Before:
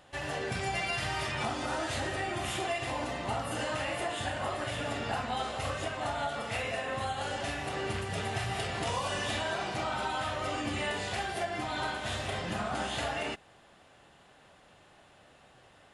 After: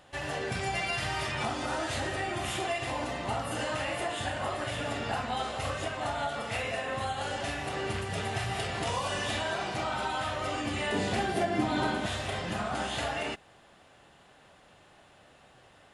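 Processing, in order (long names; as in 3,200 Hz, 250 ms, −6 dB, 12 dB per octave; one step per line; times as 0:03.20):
0:10.92–0:12.06: parametric band 240 Hz +12.5 dB 1.9 octaves
level +1 dB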